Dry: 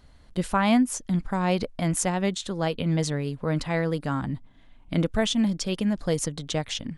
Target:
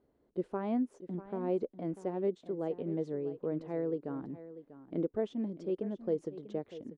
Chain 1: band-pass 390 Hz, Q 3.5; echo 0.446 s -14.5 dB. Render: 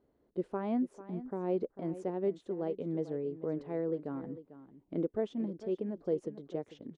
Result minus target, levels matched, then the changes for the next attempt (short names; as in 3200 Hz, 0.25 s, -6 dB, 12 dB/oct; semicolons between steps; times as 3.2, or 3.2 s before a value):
echo 0.197 s early
change: echo 0.643 s -14.5 dB